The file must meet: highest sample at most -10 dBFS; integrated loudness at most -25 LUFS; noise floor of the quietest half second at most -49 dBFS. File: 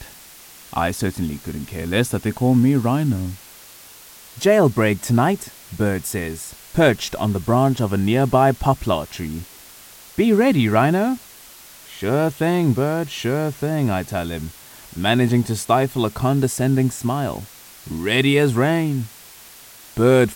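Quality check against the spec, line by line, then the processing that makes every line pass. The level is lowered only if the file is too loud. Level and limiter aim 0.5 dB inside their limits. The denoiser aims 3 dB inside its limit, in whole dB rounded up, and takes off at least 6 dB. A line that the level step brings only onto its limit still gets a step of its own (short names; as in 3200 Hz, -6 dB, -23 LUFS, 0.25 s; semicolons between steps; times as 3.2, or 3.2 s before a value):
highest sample -2.0 dBFS: fail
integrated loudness -20.0 LUFS: fail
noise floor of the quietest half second -43 dBFS: fail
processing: denoiser 6 dB, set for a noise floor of -43 dBFS; gain -5.5 dB; limiter -10.5 dBFS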